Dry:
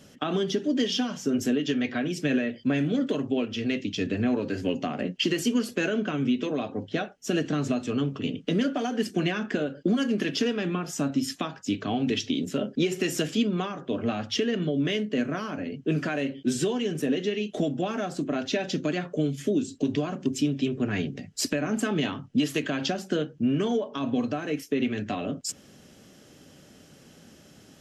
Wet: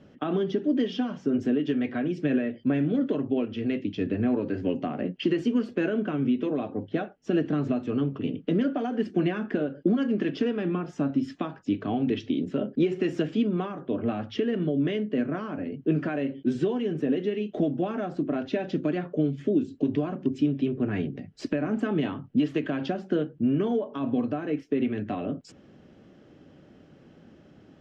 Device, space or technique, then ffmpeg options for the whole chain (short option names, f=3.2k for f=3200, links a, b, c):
phone in a pocket: -af "lowpass=3.5k,equalizer=f=330:t=o:w=0.28:g=4,highshelf=f=2.1k:g=-10.5"